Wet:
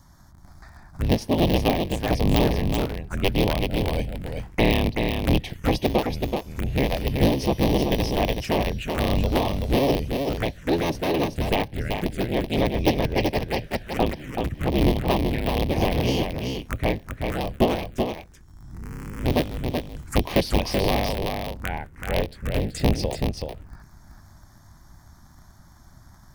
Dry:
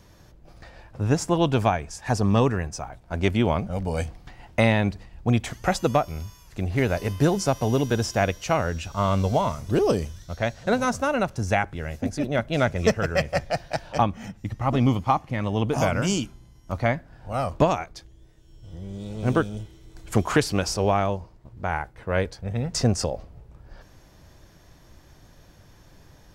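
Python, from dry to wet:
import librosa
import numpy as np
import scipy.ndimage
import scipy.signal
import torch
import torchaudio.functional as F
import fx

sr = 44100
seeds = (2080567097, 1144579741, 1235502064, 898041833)

y = fx.cycle_switch(x, sr, every=3, mode='inverted')
y = fx.env_phaser(y, sr, low_hz=440.0, high_hz=1400.0, full_db=-21.5)
y = y + 10.0 ** (-5.0 / 20.0) * np.pad(y, (int(380 * sr / 1000.0), 0))[:len(y)]
y = y * librosa.db_to_amplitude(1.5)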